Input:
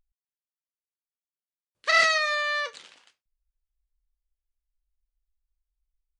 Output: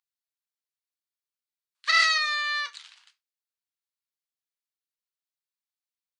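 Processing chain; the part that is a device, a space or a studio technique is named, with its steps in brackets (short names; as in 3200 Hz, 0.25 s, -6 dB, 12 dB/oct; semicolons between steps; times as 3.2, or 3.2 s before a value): headphones lying on a table (HPF 1000 Hz 24 dB/oct; bell 4200 Hz +5 dB 0.58 oct); gain -1 dB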